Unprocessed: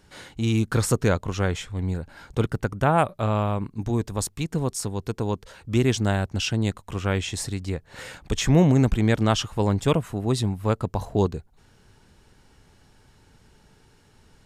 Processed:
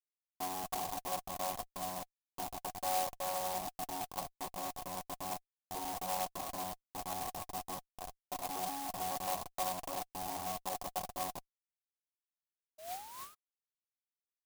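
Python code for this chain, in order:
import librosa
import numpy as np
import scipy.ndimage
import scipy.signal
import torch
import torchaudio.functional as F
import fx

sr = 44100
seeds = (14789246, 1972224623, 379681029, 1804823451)

y = fx.chord_vocoder(x, sr, chord='bare fifth', root=54)
y = scipy.signal.sosfilt(scipy.signal.butter(2, 310.0, 'highpass', fs=sr, output='sos'), y)
y = fx.schmitt(y, sr, flips_db=-37.5)
y = fx.spec_paint(y, sr, seeds[0], shape='rise', start_s=12.78, length_s=0.57, low_hz=610.0, high_hz=1300.0, level_db=-48.0)
y = fx.formant_cascade(y, sr, vowel='a')
y = fx.clock_jitter(y, sr, seeds[1], jitter_ms=0.12)
y = F.gain(torch.from_numpy(y), 8.5).numpy()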